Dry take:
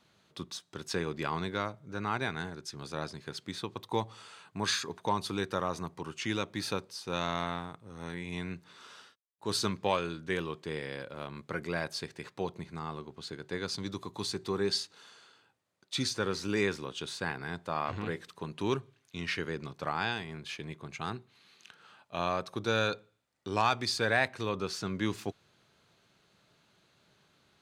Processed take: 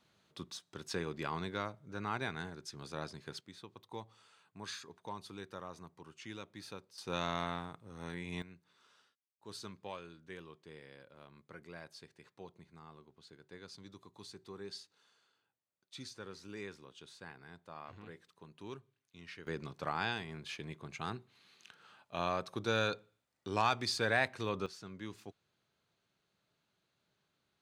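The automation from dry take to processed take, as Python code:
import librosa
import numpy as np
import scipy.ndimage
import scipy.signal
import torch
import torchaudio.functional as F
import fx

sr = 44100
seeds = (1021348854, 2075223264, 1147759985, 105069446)

y = fx.gain(x, sr, db=fx.steps((0.0, -5.0), (3.41, -14.0), (6.98, -3.5), (8.42, -16.0), (19.47, -3.5), (24.66, -13.5)))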